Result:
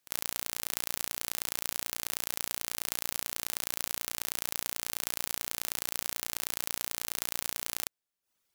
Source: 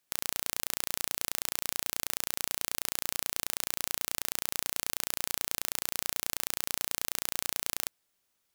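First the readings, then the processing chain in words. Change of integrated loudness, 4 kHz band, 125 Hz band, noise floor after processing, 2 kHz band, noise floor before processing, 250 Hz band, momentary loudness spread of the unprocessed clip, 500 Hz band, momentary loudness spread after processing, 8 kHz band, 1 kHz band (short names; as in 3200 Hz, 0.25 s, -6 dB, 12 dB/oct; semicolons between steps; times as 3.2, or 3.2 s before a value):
-0.5 dB, -0.5 dB, -0.5 dB, -82 dBFS, -0.5 dB, -77 dBFS, -0.5 dB, 0 LU, -0.5 dB, 0 LU, -0.5 dB, -0.5 dB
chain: reverb removal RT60 0.54 s; pre-echo 49 ms -16.5 dB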